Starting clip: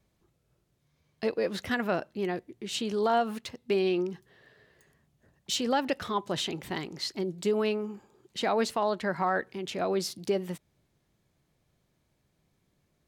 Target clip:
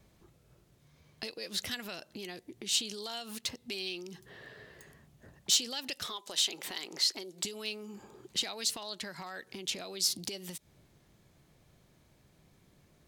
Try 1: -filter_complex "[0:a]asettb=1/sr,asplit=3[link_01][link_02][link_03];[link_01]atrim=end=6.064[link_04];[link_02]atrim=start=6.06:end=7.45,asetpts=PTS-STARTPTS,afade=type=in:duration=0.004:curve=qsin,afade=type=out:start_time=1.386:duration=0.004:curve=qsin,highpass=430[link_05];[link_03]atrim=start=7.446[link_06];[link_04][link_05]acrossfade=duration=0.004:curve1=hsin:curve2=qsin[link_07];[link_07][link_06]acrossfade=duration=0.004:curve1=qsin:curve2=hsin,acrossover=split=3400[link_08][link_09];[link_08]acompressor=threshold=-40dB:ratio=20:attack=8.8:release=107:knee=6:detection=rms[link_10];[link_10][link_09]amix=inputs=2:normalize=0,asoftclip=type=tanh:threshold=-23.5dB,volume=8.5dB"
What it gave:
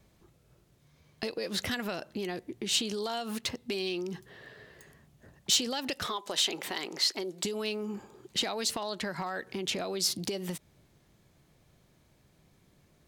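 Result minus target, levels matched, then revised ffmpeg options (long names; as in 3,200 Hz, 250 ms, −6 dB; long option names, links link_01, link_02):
downward compressor: peak gain reduction −9.5 dB
-filter_complex "[0:a]asettb=1/sr,asplit=3[link_01][link_02][link_03];[link_01]atrim=end=6.064[link_04];[link_02]atrim=start=6.06:end=7.45,asetpts=PTS-STARTPTS,afade=type=in:duration=0.004:curve=qsin,afade=type=out:start_time=1.386:duration=0.004:curve=qsin,highpass=430[link_05];[link_03]atrim=start=7.446[link_06];[link_04][link_05]acrossfade=duration=0.004:curve1=hsin:curve2=qsin[link_07];[link_07][link_06]acrossfade=duration=0.004:curve1=qsin:curve2=hsin,acrossover=split=3400[link_08][link_09];[link_08]acompressor=threshold=-50dB:ratio=20:attack=8.8:release=107:knee=6:detection=rms[link_10];[link_10][link_09]amix=inputs=2:normalize=0,asoftclip=type=tanh:threshold=-23.5dB,volume=8.5dB"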